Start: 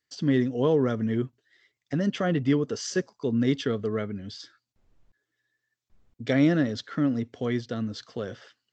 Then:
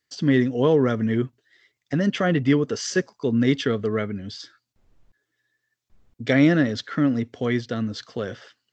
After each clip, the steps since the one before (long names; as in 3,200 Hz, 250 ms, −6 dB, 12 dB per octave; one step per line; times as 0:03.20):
dynamic equaliser 2,000 Hz, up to +4 dB, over −48 dBFS, Q 1.3
level +4 dB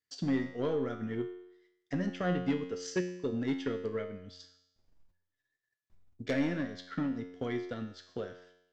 transient designer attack +7 dB, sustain −6 dB
soft clipping −11 dBFS, distortion −14 dB
tuned comb filter 90 Hz, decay 0.81 s, harmonics all, mix 80%
level −2.5 dB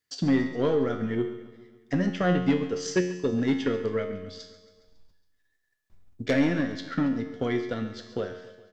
repeating echo 138 ms, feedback 60%, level −16 dB
level +7.5 dB